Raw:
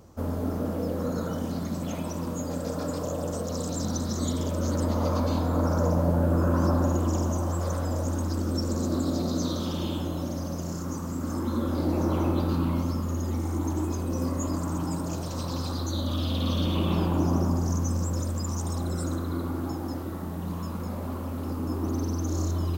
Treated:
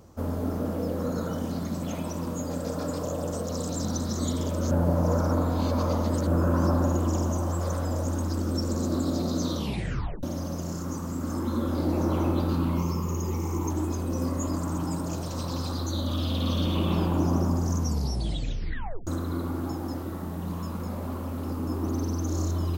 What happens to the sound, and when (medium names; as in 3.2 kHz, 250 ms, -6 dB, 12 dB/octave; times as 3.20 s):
4.71–6.27 s: reverse
9.55 s: tape stop 0.68 s
12.77–13.71 s: rippled EQ curve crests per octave 0.77, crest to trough 10 dB
17.78 s: tape stop 1.29 s